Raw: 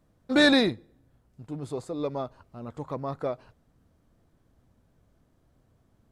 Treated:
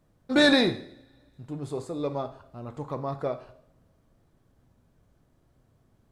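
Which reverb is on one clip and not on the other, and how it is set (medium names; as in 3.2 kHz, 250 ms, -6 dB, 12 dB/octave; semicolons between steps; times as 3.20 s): two-slope reverb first 0.6 s, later 2.5 s, from -28 dB, DRR 8 dB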